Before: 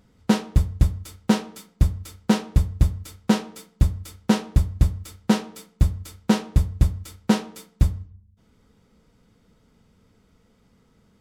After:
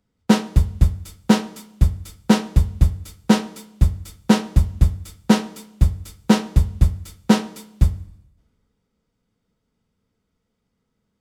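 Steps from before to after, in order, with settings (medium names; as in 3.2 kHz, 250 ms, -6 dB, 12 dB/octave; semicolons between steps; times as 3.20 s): Schroeder reverb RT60 1.5 s, combs from 29 ms, DRR 18 dB; three bands expanded up and down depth 40%; trim +1.5 dB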